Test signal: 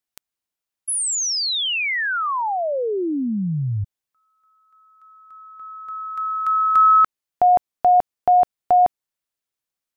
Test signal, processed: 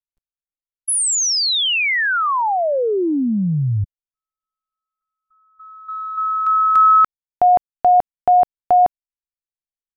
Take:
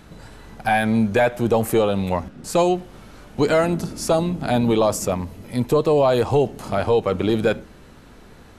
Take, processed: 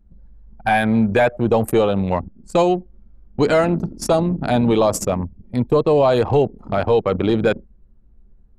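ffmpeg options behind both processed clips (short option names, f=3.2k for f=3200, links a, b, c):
-filter_complex "[0:a]anlmdn=251,asplit=2[a][b];[b]alimiter=limit=-19dB:level=0:latency=1,volume=-3dB[c];[a][c]amix=inputs=2:normalize=0"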